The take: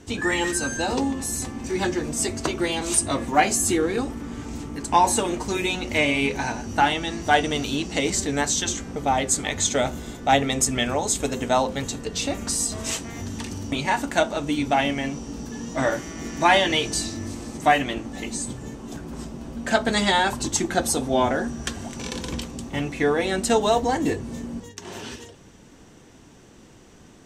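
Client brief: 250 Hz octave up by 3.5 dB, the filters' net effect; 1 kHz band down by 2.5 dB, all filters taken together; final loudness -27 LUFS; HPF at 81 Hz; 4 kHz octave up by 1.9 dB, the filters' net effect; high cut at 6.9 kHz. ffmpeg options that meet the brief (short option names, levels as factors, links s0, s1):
-af "highpass=81,lowpass=6900,equalizer=f=250:t=o:g=4.5,equalizer=f=1000:t=o:g=-4,equalizer=f=4000:t=o:g=3,volume=0.668"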